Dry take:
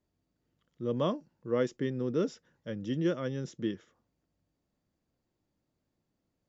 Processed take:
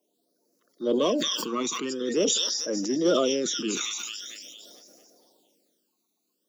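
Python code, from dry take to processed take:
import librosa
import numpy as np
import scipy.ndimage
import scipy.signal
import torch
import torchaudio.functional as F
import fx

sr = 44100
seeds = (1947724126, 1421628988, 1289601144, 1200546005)

p1 = fx.spec_quant(x, sr, step_db=30)
p2 = fx.high_shelf_res(p1, sr, hz=2800.0, db=6.5, q=1.5)
p3 = p2 + fx.echo_wet_highpass(p2, sr, ms=225, feedback_pct=53, hz=3300.0, wet_db=-4, dry=0)
p4 = fx.phaser_stages(p3, sr, stages=12, low_hz=530.0, high_hz=3300.0, hz=0.45, feedback_pct=20)
p5 = scipy.signal.sosfilt(scipy.signal.bessel(8, 380.0, 'highpass', norm='mag', fs=sr, output='sos'), p4)
p6 = np.clip(10.0 ** (32.5 / 20.0) * p5, -1.0, 1.0) / 10.0 ** (32.5 / 20.0)
p7 = p5 + F.gain(torch.from_numpy(p6), -8.0).numpy()
p8 = fx.sustainer(p7, sr, db_per_s=22.0)
y = F.gain(torch.from_numpy(p8), 8.5).numpy()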